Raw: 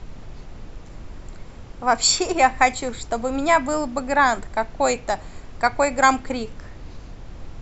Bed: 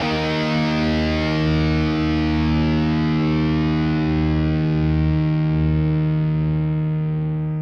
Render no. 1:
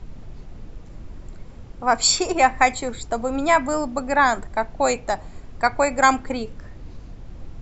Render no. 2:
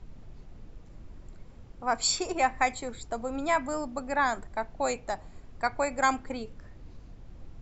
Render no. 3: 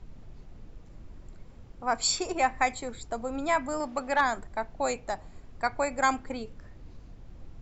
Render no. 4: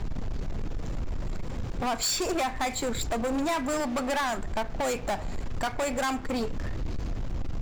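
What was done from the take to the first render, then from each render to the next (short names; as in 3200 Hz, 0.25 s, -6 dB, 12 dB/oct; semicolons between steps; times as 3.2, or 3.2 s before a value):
denoiser 6 dB, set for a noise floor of -41 dBFS
gain -9 dB
3.8–4.21 overdrive pedal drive 12 dB, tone 4600 Hz, clips at -14 dBFS
compressor 3:1, threshold -39 dBFS, peak gain reduction 15 dB; sample leveller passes 5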